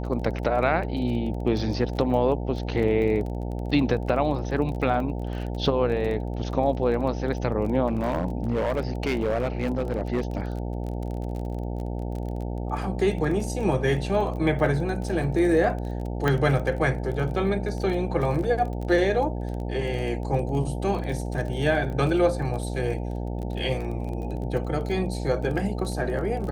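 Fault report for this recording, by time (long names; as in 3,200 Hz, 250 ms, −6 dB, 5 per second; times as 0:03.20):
mains buzz 60 Hz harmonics 15 −30 dBFS
surface crackle 23 per second −32 dBFS
0:07.87–0:10.40: clipping −20 dBFS
0:16.28: click −11 dBFS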